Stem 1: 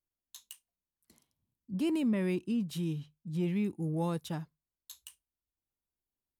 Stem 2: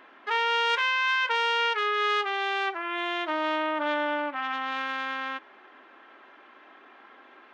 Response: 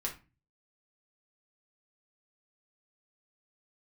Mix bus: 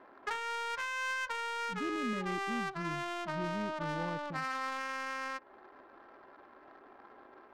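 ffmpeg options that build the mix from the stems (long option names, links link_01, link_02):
-filter_complex "[0:a]volume=-8dB[link_01];[1:a]acompressor=threshold=-36dB:ratio=5,lowshelf=frequency=210:gain=-10,volume=0dB,asplit=2[link_02][link_03];[link_03]volume=-7dB[link_04];[2:a]atrim=start_sample=2205[link_05];[link_04][link_05]afir=irnorm=-1:irlink=0[link_06];[link_01][link_02][link_06]amix=inputs=3:normalize=0,adynamicsmooth=sensitivity=4.5:basefreq=650"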